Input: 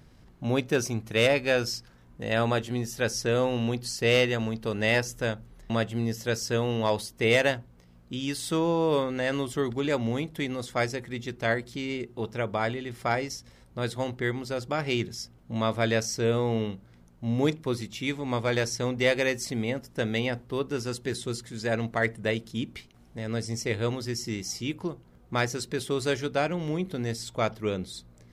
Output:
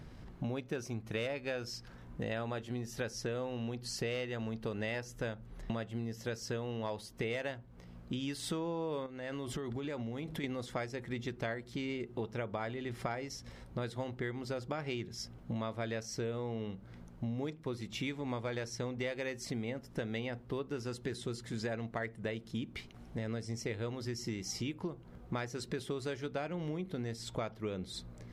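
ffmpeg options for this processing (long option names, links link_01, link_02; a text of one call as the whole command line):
ffmpeg -i in.wav -filter_complex "[0:a]asettb=1/sr,asplit=3[link_01][link_02][link_03];[link_01]atrim=end=9.064[link_04];[link_02]atrim=start=9.06:end=10.44,asetpts=PTS-STARTPTS,afade=type=in:duration=0.004:curve=qsin,afade=type=out:start_time=1.376:duration=0.004:curve=qsin,acompressor=threshold=-36dB:ratio=12:attack=3.2:release=140:knee=1:detection=peak[link_05];[link_03]atrim=start=10.436[link_06];[link_04][link_05]acrossfade=duration=0.004:curve1=hsin:curve2=qsin[link_07];[link_07][link_06]acrossfade=duration=0.004:curve1=qsin:curve2=hsin,highshelf=frequency=5000:gain=-8.5,acompressor=threshold=-39dB:ratio=8,volume=4dB" out.wav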